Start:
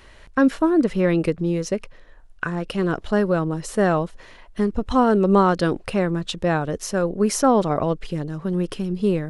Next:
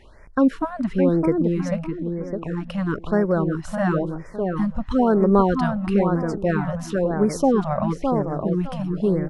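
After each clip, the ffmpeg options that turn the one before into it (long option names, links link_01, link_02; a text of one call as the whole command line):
ffmpeg -i in.wav -filter_complex "[0:a]highshelf=frequency=2800:gain=-11,asplit=2[link_01][link_02];[link_02]adelay=610,lowpass=frequency=1900:poles=1,volume=-5dB,asplit=2[link_03][link_04];[link_04]adelay=610,lowpass=frequency=1900:poles=1,volume=0.32,asplit=2[link_05][link_06];[link_06]adelay=610,lowpass=frequency=1900:poles=1,volume=0.32,asplit=2[link_07][link_08];[link_08]adelay=610,lowpass=frequency=1900:poles=1,volume=0.32[link_09];[link_03][link_05][link_07][link_09]amix=inputs=4:normalize=0[link_10];[link_01][link_10]amix=inputs=2:normalize=0,afftfilt=real='re*(1-between(b*sr/1024,340*pow(3500/340,0.5+0.5*sin(2*PI*1*pts/sr))/1.41,340*pow(3500/340,0.5+0.5*sin(2*PI*1*pts/sr))*1.41))':imag='im*(1-between(b*sr/1024,340*pow(3500/340,0.5+0.5*sin(2*PI*1*pts/sr))/1.41,340*pow(3500/340,0.5+0.5*sin(2*PI*1*pts/sr))*1.41))':win_size=1024:overlap=0.75" out.wav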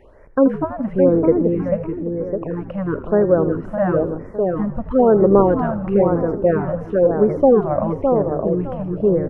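ffmpeg -i in.wav -filter_complex "[0:a]acrossover=split=3000[link_01][link_02];[link_02]acompressor=threshold=-60dB:ratio=4:attack=1:release=60[link_03];[link_01][link_03]amix=inputs=2:normalize=0,equalizer=frequency=500:width_type=o:width=1:gain=10,equalizer=frequency=4000:width_type=o:width=1:gain=-12,equalizer=frequency=8000:width_type=o:width=1:gain=-8,asplit=2[link_04][link_05];[link_05]asplit=5[link_06][link_07][link_08][link_09][link_10];[link_06]adelay=80,afreqshift=-60,volume=-13dB[link_11];[link_07]adelay=160,afreqshift=-120,volume=-18.7dB[link_12];[link_08]adelay=240,afreqshift=-180,volume=-24.4dB[link_13];[link_09]adelay=320,afreqshift=-240,volume=-30dB[link_14];[link_10]adelay=400,afreqshift=-300,volume=-35.7dB[link_15];[link_11][link_12][link_13][link_14][link_15]amix=inputs=5:normalize=0[link_16];[link_04][link_16]amix=inputs=2:normalize=0,volume=-1dB" out.wav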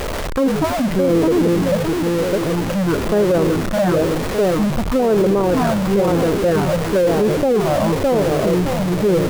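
ffmpeg -i in.wav -af "aeval=exprs='val(0)+0.5*0.133*sgn(val(0))':channel_layout=same,alimiter=limit=-9.5dB:level=0:latency=1:release=12" out.wav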